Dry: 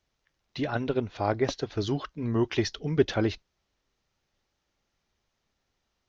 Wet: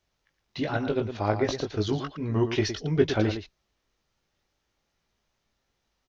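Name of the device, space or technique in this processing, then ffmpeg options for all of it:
slapback doubling: -filter_complex "[0:a]asplit=3[s0][s1][s2];[s1]adelay=19,volume=0.531[s3];[s2]adelay=113,volume=0.355[s4];[s0][s3][s4]amix=inputs=3:normalize=0"

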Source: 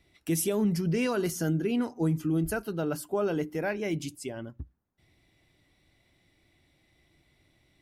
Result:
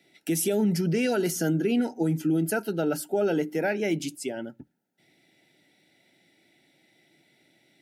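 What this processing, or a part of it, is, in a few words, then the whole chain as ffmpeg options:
PA system with an anti-feedback notch: -af "highpass=f=170:w=0.5412,highpass=f=170:w=1.3066,asuperstop=centerf=1100:order=20:qfactor=3.3,alimiter=limit=0.0794:level=0:latency=1:release=56,volume=1.78"

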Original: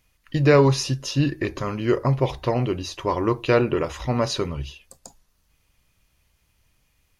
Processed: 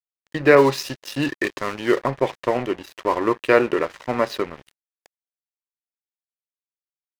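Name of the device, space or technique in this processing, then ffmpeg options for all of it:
pocket radio on a weak battery: -filter_complex "[0:a]highpass=280,lowpass=3400,aeval=exprs='sgn(val(0))*max(abs(val(0))-0.0126,0)':c=same,equalizer=f=1800:t=o:w=0.4:g=5.5,asettb=1/sr,asplit=3[s0][s1][s2];[s0]atrim=end=0.554[s3];[s1]atrim=start=0.55:end=2.02,asetpts=PTS-STARTPTS,afade=t=in:d=0.004:c=qsin,afade=t=out:st=1.466:d=0.004:c=qsin,adynamicequalizer=threshold=0.00794:dfrequency=3100:dqfactor=0.7:tfrequency=3100:tqfactor=0.7:attack=5:release=100:ratio=0.375:range=4:mode=boostabove:tftype=highshelf[s4];[s2]atrim=start=2.016[s5];[s3][s4]acrossfade=d=0.004:c1=hsin:c2=qsin[s6];[s6][s5]acrossfade=d=0.004:c1=qsin:c2=hsin,volume=1.58"

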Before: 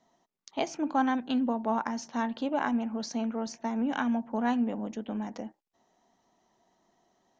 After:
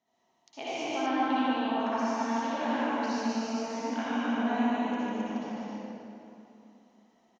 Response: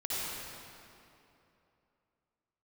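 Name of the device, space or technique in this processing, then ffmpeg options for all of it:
stadium PA: -filter_complex "[0:a]highpass=f=130:p=1,equalizer=f=2500:t=o:w=0.78:g=6,aecho=1:1:148.7|265.3:0.708|0.708[s0];[1:a]atrim=start_sample=2205[s1];[s0][s1]afir=irnorm=-1:irlink=0,asettb=1/sr,asplit=3[s2][s3][s4];[s2]atrim=end=1.064[s5];[s3]atrim=start=1.06:end=1.8,asetpts=PTS-STARTPTS,afade=t=in:d=0.004:c=qsin,afade=t=out:st=0.736:d=0.004:c=qsin,lowpass=f=5000:w=0.5412,lowpass=f=5000:w=1.3066[s6];[s4]atrim=start=1.796[s7];[s5][s6]acrossfade=d=0.004:c1=hsin:c2=qsin[s8];[s8][s7]acrossfade=d=0.004:c1=qsin:c2=hsin,volume=0.398"

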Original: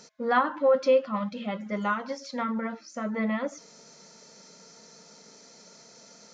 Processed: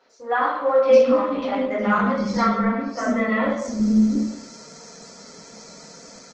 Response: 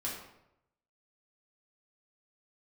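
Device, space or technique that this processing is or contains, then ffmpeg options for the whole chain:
speakerphone in a meeting room: -filter_complex "[0:a]asplit=3[s0][s1][s2];[s0]afade=t=out:st=1.21:d=0.02[s3];[s1]lowpass=6100,afade=t=in:st=1.21:d=0.02,afade=t=out:st=2.8:d=0.02[s4];[s2]afade=t=in:st=2.8:d=0.02[s5];[s3][s4][s5]amix=inputs=3:normalize=0,lowshelf=f=74:g=5.5,acrossover=split=330|3500[s6][s7][s8];[s8]adelay=100[s9];[s6]adelay=690[s10];[s10][s7][s9]amix=inputs=3:normalize=0[s11];[1:a]atrim=start_sample=2205[s12];[s11][s12]afir=irnorm=-1:irlink=0,dynaudnorm=f=220:g=7:m=2.66" -ar 48000 -c:a libopus -b:a 16k

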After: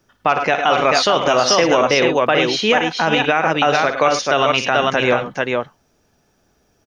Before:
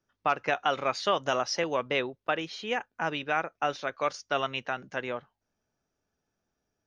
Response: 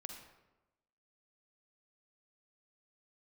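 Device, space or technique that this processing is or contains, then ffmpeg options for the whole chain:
mastering chain: -af "equalizer=f=1400:t=o:w=0.77:g=-2,aecho=1:1:57|104|108|437:0.224|0.178|0.119|0.562,acompressor=threshold=0.0355:ratio=2.5,alimiter=level_in=13.3:limit=0.891:release=50:level=0:latency=1,volume=0.708"

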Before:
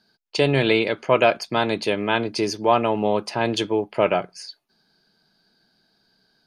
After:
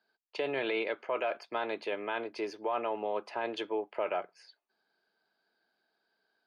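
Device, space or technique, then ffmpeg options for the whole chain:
DJ mixer with the lows and highs turned down: -filter_complex "[0:a]acrossover=split=340 3100:gain=0.0631 1 0.126[s0][s1][s2];[s0][s1][s2]amix=inputs=3:normalize=0,alimiter=limit=0.178:level=0:latency=1:release=14,volume=0.398"

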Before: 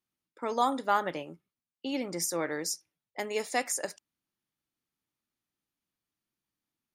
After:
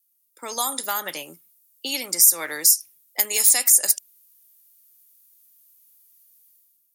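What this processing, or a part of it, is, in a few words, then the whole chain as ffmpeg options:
FM broadcast chain: -filter_complex "[0:a]highpass=71,dynaudnorm=f=100:g=9:m=3.98,acrossover=split=220|750[s0][s1][s2];[s0]acompressor=threshold=0.00501:ratio=4[s3];[s1]acompressor=threshold=0.0355:ratio=4[s4];[s2]acompressor=threshold=0.126:ratio=4[s5];[s3][s4][s5]amix=inputs=3:normalize=0,aemphasis=mode=production:type=75fm,alimiter=limit=0.355:level=0:latency=1:release=136,asoftclip=type=hard:threshold=0.299,lowpass=f=15000:w=0.5412,lowpass=f=15000:w=1.3066,aemphasis=mode=production:type=75fm,volume=0.447"

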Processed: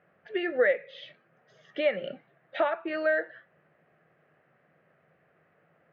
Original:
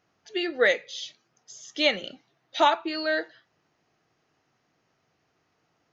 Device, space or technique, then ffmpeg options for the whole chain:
bass amplifier: -af "acompressor=threshold=0.0282:ratio=4,highpass=88,equalizer=f=110:t=q:w=4:g=-6,equalizer=f=160:t=q:w=4:g=6,equalizer=f=290:t=q:w=4:g=-7,equalizer=f=560:t=q:w=4:g=9,equalizer=f=920:t=q:w=4:g=-7,equalizer=f=1700:t=q:w=4:g=5,lowpass=f=2300:w=0.5412,lowpass=f=2300:w=1.3066,volume=1.78"

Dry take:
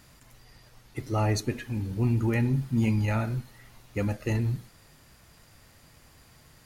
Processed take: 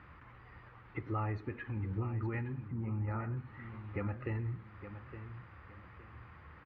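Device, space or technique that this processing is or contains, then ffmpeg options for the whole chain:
bass amplifier: -filter_complex "[0:a]acompressor=threshold=0.0141:ratio=4,highpass=67,equalizer=f=74:t=q:w=4:g=7,equalizer=f=140:t=q:w=4:g=-8,equalizer=f=240:t=q:w=4:g=-8,equalizer=f=420:t=q:w=4:g=-3,equalizer=f=640:t=q:w=4:g=-9,equalizer=f=1200:t=q:w=4:g=6,lowpass=f=2200:w=0.5412,lowpass=f=2200:w=1.3066,asettb=1/sr,asplit=3[s0][s1][s2];[s0]atrim=end=2.684[s3];[s1]atrim=start=2.68:end=3.37,asetpts=PTS-STARTPTS,afade=t=in:d=0.004:c=qsin,afade=t=out:st=0.686:d=0.004:c=qsin,lowpass=1300[s4];[s2]atrim=start=3.366[s5];[s3][s4]acrossfade=d=0.004:c1=hsin:c2=qsin[s6];[s6][s5]acrossfade=d=0.004:c1=qsin:c2=hsin,aecho=1:1:865|1730|2595:0.282|0.0874|0.0271,volume=1.5"

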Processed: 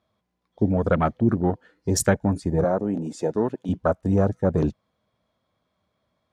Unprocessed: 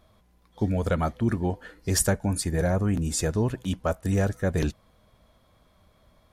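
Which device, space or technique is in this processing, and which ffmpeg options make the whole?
over-cleaned archive recording: -filter_complex "[0:a]asettb=1/sr,asplit=3[s0][s1][s2];[s0]atrim=end=2.644[s3];[s1]atrim=start=2.64:end=3.69,asetpts=PTS-STARTPTS,afade=t=in:d=0.004:c=qsin,afade=t=out:st=1.046:d=0.004:c=qsin,highpass=250[s4];[s2]atrim=start=3.686[s5];[s3][s4]acrossfade=d=0.004:c1=hsin:c2=qsin[s6];[s6][s5]acrossfade=d=0.004:c1=qsin:c2=hsin,highpass=110,lowpass=6800,afwtdn=0.0224,volume=1.88"

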